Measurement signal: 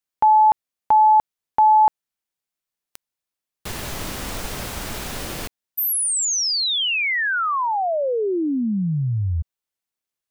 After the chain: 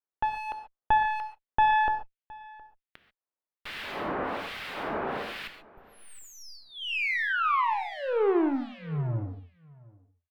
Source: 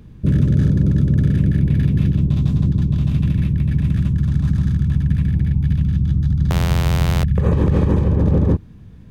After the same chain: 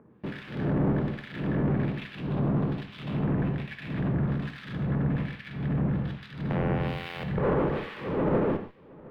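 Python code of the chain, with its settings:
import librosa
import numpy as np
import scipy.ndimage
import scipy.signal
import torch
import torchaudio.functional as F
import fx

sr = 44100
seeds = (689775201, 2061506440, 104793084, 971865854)

p1 = scipy.signal.sosfilt(scipy.signal.butter(2, 370.0, 'highpass', fs=sr, output='sos'), x)
p2 = fx.fuzz(p1, sr, gain_db=47.0, gate_db=-45.0)
p3 = p1 + F.gain(torch.from_numpy(p2), -11.5).numpy()
p4 = fx.harmonic_tremolo(p3, sr, hz=1.2, depth_pct=100, crossover_hz=1700.0)
p5 = fx.clip_asym(p4, sr, top_db=-28.5, bottom_db=-12.0)
p6 = fx.air_absorb(p5, sr, metres=450.0)
p7 = p6 + fx.echo_single(p6, sr, ms=716, db=-23.0, dry=0)
y = fx.rev_gated(p7, sr, seeds[0], gate_ms=160, shape='flat', drr_db=7.0)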